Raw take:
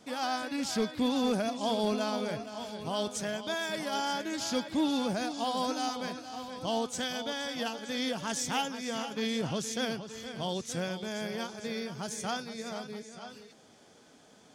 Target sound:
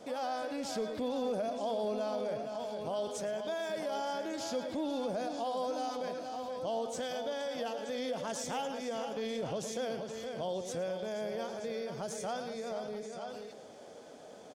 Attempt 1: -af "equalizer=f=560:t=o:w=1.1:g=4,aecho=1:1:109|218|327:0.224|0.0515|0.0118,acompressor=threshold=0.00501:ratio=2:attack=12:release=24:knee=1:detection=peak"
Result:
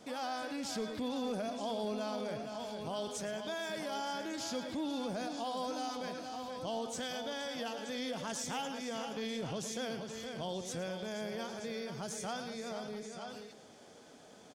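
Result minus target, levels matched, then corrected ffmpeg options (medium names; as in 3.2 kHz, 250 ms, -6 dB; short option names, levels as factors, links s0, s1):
500 Hz band -2.5 dB
-af "equalizer=f=560:t=o:w=1.1:g=13.5,aecho=1:1:109|218|327:0.224|0.0515|0.0118,acompressor=threshold=0.00501:ratio=2:attack=12:release=24:knee=1:detection=peak"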